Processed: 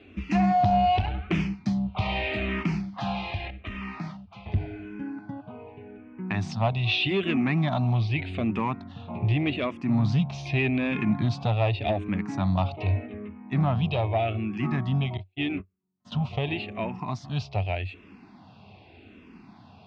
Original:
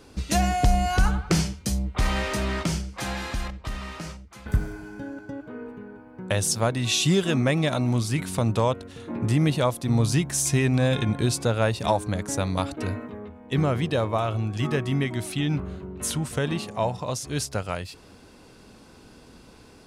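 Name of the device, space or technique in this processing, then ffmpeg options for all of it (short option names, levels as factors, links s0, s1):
barber-pole phaser into a guitar amplifier: -filter_complex "[0:a]asettb=1/sr,asplit=3[s0][s1][s2];[s0]atrim=end=15.174[s3];[s1]atrim=start=15.17:end=16.12,asetpts=PTS-STARTPTS,afade=t=in:d=0.004:c=qsin,afade=t=out:st=0.946:d=0.004:c=qsin,agate=range=0.00447:threshold=0.0562:ratio=16:detection=peak[s4];[s2]atrim=start=16.116[s5];[s3][s4]acrossfade=d=0.004:c1=hsin:c2=qsin[s6];[s6][s5]acrossfade=d=0.004:c1=qsin:c2=hsin,asplit=2[s7][s8];[s8]afreqshift=-0.84[s9];[s7][s9]amix=inputs=2:normalize=1,asoftclip=type=tanh:threshold=0.1,highpass=89,equalizer=f=94:t=q:w=4:g=9,equalizer=f=200:t=q:w=4:g=5,equalizer=f=500:t=q:w=4:g=-10,equalizer=f=720:t=q:w=4:g=7,equalizer=f=1500:t=q:w=4:g=-7,equalizer=f=2500:t=q:w=4:g=7,lowpass=f=3600:w=0.5412,lowpass=f=3600:w=1.3066,volume=1.26"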